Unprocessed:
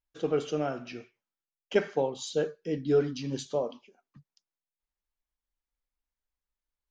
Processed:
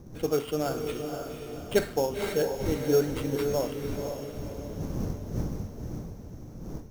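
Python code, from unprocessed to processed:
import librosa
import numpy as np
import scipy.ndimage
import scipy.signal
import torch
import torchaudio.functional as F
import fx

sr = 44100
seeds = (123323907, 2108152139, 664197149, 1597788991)

y = fx.dmg_wind(x, sr, seeds[0], corner_hz=210.0, level_db=-40.0)
y = fx.sample_hold(y, sr, seeds[1], rate_hz=6000.0, jitter_pct=0)
y = fx.echo_diffused(y, sr, ms=513, feedback_pct=47, wet_db=-5.5)
y = F.gain(torch.from_numpy(y), 1.0).numpy()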